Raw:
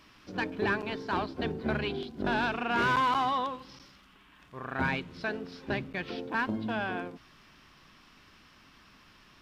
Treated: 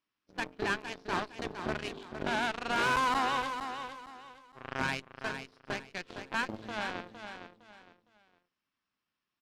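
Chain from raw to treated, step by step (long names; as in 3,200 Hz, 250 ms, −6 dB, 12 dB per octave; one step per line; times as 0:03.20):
noise gate −46 dBFS, range −10 dB
low-shelf EQ 110 Hz −12 dB
harmonic generator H 2 −7 dB, 3 −24 dB, 5 −34 dB, 7 −19 dB, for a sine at −18.5 dBFS
on a send: repeating echo 460 ms, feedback 29%, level −8.5 dB
on the sum: level −2 dB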